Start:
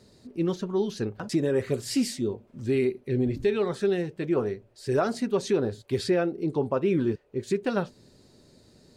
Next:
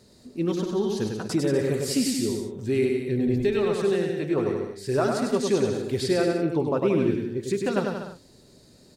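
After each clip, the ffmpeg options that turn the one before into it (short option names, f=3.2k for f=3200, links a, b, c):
-filter_complex "[0:a]highshelf=f=6.9k:g=6.5,asplit=2[a][b];[b]aecho=0:1:100|180|244|295.2|336.2:0.631|0.398|0.251|0.158|0.1[c];[a][c]amix=inputs=2:normalize=0"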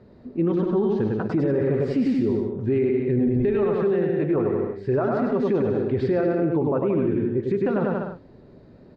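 -af "lowpass=1.9k,alimiter=limit=-21dB:level=0:latency=1:release=38,aemphasis=mode=reproduction:type=75kf,volume=6.5dB"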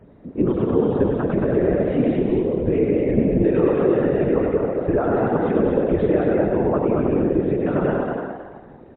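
-filter_complex "[0:a]asplit=5[a][b][c][d][e];[b]adelay=225,afreqshift=75,volume=-4dB[f];[c]adelay=450,afreqshift=150,volume=-13.6dB[g];[d]adelay=675,afreqshift=225,volume=-23.3dB[h];[e]adelay=900,afreqshift=300,volume=-32.9dB[i];[a][f][g][h][i]amix=inputs=5:normalize=0,afftfilt=real='hypot(re,im)*cos(2*PI*random(0))':imag='hypot(re,im)*sin(2*PI*random(1))':win_size=512:overlap=0.75,volume=8dB" -ar 8000 -c:a libmp3lame -b:a 64k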